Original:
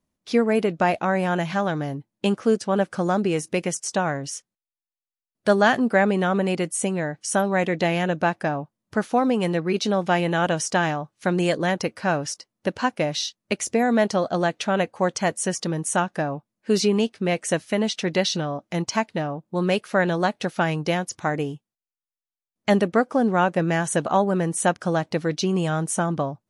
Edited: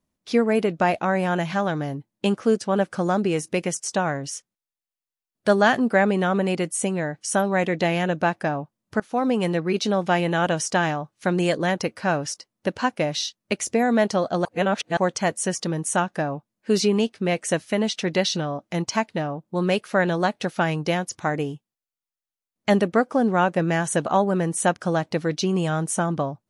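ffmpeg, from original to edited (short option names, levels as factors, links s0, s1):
-filter_complex "[0:a]asplit=4[s0][s1][s2][s3];[s0]atrim=end=9,asetpts=PTS-STARTPTS,afade=t=out:st=8.996:d=0.004:c=hsin:silence=0.0944061[s4];[s1]atrim=start=9:end=14.452,asetpts=PTS-STARTPTS,afade=t=in:d=0.39:c=qsin:silence=0.0944061[s5];[s2]atrim=start=14.448:end=14.972,asetpts=PTS-STARTPTS,areverse[s6];[s3]atrim=start=14.968[s7];[s4][s5]concat=n=2:v=0:a=1[s8];[s8][s6]acrossfade=d=0.004:c1=hsin:c2=hsin[s9];[s9][s7]acrossfade=d=0.004:c1=hsin:c2=hsin"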